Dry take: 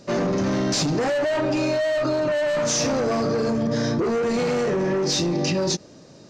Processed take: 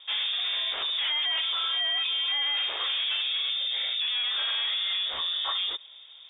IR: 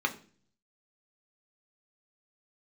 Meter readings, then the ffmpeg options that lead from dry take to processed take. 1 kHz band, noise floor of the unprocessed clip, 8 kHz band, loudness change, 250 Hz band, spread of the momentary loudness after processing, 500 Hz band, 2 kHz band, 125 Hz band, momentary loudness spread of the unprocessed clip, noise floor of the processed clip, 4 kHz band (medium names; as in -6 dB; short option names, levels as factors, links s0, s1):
-10.0 dB, -47 dBFS, under -40 dB, -3.5 dB, under -40 dB, 2 LU, -29.0 dB, -2.0 dB, under -40 dB, 2 LU, -49 dBFS, +8.5 dB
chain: -filter_complex "[0:a]lowpass=f=3200:t=q:w=0.5098,lowpass=f=3200:t=q:w=0.6013,lowpass=f=3200:t=q:w=0.9,lowpass=f=3200:t=q:w=2.563,afreqshift=-3800,lowshelf=f=310:t=q:w=1.5:g=-13,acrossover=split=3000[s0][s1];[s1]acompressor=threshold=0.0178:ratio=4:attack=1:release=60[s2];[s0][s2]amix=inputs=2:normalize=0,volume=0.794"